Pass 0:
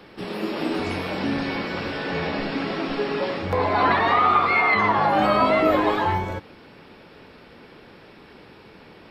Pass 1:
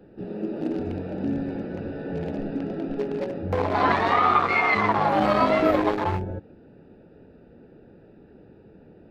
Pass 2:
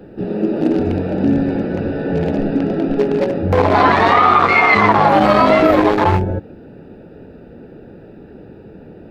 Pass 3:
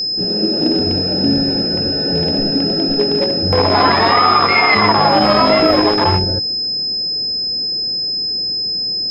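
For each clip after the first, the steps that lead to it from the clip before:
local Wiener filter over 41 samples
loudness maximiser +13 dB; trim -1 dB
whistle 5.1 kHz -16 dBFS; trim -1 dB

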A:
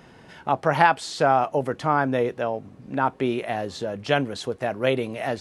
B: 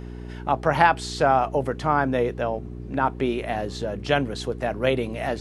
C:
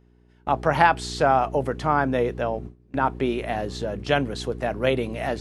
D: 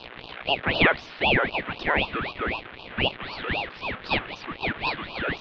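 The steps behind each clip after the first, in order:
mains buzz 60 Hz, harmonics 7, -36 dBFS -4 dB/octave
gate with hold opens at -24 dBFS
jump at every zero crossing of -22.5 dBFS; mistuned SSB +240 Hz 580–2700 Hz; ring modulator with a swept carrier 1.1 kHz, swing 65%, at 3.9 Hz

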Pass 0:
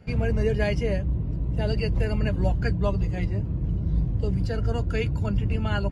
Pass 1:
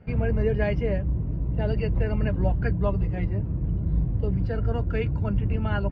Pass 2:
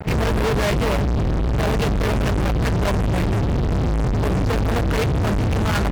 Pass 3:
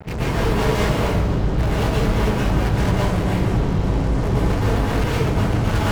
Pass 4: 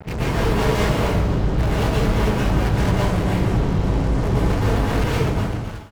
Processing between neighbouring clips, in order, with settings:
low-pass 2.2 kHz 12 dB/octave
fuzz box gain 44 dB, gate -50 dBFS; trim -5 dB
reverberation RT60 0.95 s, pre-delay 108 ms, DRR -6.5 dB; trim -7 dB
fade out at the end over 0.68 s

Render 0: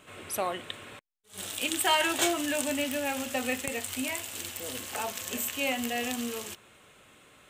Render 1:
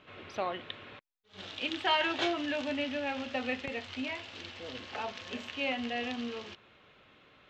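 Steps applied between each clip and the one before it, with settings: inverse Chebyshev low-pass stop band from 8.5 kHz, stop band 40 dB; trim -3 dB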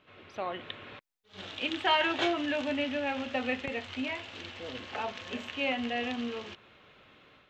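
dynamic bell 4.9 kHz, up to -5 dB, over -56 dBFS, Q 1.8; level rider gain up to 8 dB; trim -5.5 dB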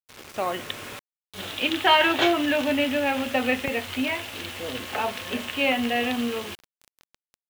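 word length cut 8-bit, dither none; trim +8 dB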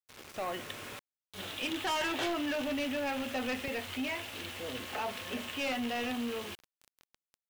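saturation -23.5 dBFS, distortion -8 dB; trim -6 dB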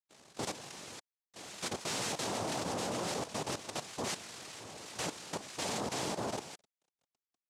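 rattle on loud lows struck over -48 dBFS, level -35 dBFS; noise-vocoded speech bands 2; level held to a coarse grid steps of 12 dB

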